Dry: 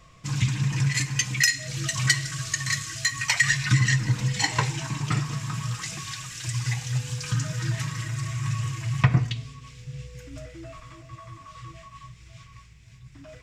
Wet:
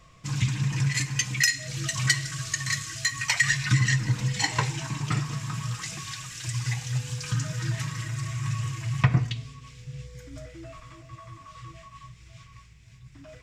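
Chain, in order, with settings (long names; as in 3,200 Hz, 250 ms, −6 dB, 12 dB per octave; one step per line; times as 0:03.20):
0:10.02–0:10.47: notch filter 2,700 Hz, Q 7.2
level −1.5 dB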